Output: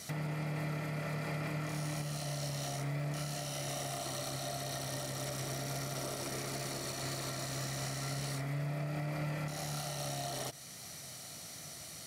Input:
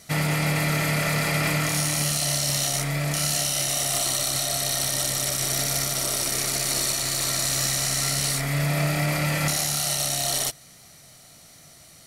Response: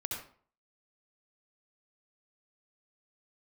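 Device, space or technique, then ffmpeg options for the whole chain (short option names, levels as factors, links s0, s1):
broadcast voice chain: -af "highpass=75,deesser=1,acompressor=threshold=0.0224:ratio=4,equalizer=f=5300:t=o:w=0.77:g=2,alimiter=level_in=2.11:limit=0.0631:level=0:latency=1:release=425,volume=0.473,volume=1.19"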